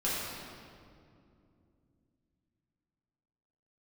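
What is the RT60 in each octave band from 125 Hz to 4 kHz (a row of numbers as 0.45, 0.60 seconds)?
4.0, 3.9, 2.9, 2.2, 1.8, 1.5 seconds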